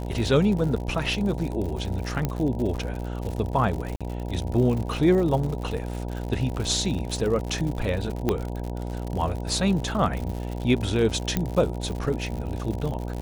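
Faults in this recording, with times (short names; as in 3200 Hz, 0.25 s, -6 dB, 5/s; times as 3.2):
buzz 60 Hz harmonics 16 -31 dBFS
crackle 87/s -30 dBFS
2.25 pop -12 dBFS
3.96–4.01 gap 46 ms
8.29 pop -10 dBFS
11.37 pop -10 dBFS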